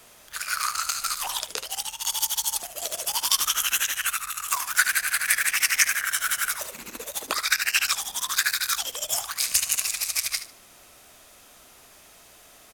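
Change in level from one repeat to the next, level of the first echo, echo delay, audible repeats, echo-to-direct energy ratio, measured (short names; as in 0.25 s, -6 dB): -13.0 dB, -12.0 dB, 74 ms, 2, -12.0 dB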